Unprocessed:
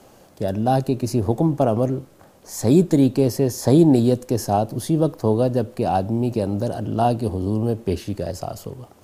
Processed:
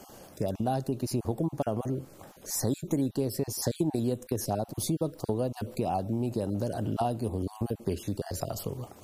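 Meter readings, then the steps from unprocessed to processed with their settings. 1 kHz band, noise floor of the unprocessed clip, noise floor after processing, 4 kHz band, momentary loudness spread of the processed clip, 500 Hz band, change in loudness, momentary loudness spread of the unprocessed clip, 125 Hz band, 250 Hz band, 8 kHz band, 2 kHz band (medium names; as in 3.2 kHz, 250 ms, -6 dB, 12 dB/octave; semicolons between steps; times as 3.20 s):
-10.5 dB, -51 dBFS, -53 dBFS, -6.0 dB, 5 LU, -11.5 dB, -11.0 dB, 13 LU, -10.5 dB, -12.0 dB, -2.5 dB, -9.0 dB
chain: random holes in the spectrogram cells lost 22%; treble shelf 6.7 kHz +6.5 dB; compression 3:1, threshold -29 dBFS, peak gain reduction 14 dB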